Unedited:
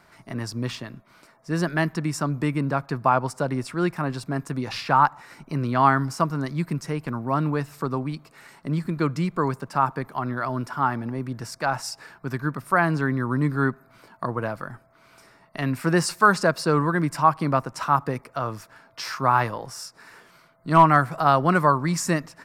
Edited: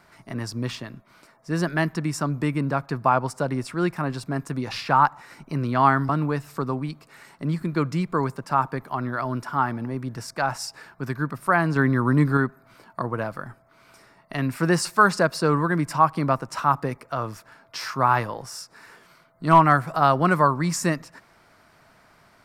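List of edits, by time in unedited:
6.09–7.33 cut
13–13.61 gain +4 dB

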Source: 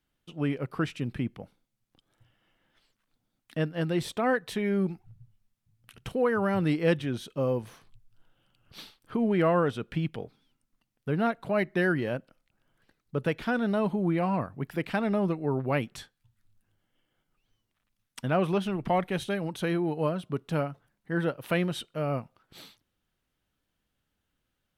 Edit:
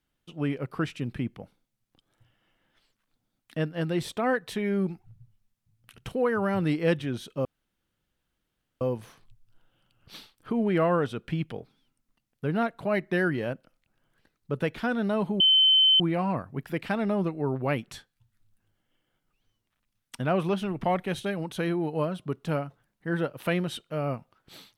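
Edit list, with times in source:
7.45 insert room tone 1.36 s
14.04 add tone 3070 Hz -16 dBFS 0.60 s

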